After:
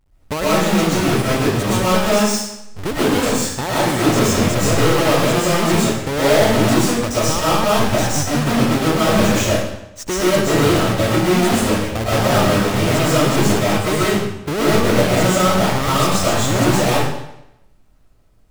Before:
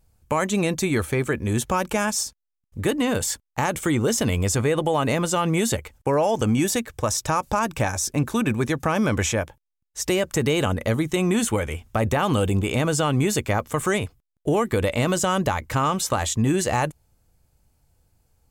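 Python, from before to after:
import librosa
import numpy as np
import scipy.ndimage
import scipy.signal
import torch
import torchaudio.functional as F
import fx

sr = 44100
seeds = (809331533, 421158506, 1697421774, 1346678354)

y = fx.halfwave_hold(x, sr)
y = fx.high_shelf(y, sr, hz=10000.0, db=-3.5)
y = fx.rev_freeverb(y, sr, rt60_s=0.84, hf_ratio=0.95, predelay_ms=85, drr_db=-8.5)
y = F.gain(torch.from_numpy(y), -6.0).numpy()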